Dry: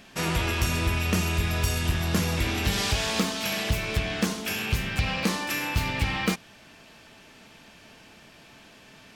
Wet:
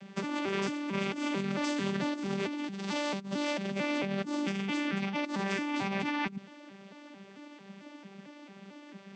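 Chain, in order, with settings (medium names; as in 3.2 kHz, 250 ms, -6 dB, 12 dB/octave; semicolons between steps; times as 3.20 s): vocoder on a broken chord bare fifth, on G3, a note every 223 ms; compressor with a negative ratio -34 dBFS, ratio -1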